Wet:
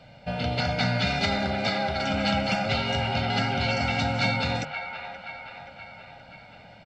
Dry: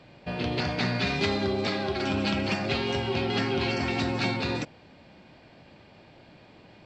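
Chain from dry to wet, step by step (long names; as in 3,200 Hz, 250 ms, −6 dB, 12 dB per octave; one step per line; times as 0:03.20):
mains-hum notches 50/100/150 Hz
comb filter 1.4 ms, depth 86%
on a send: delay with a band-pass on its return 526 ms, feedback 55%, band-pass 1,300 Hz, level −6 dB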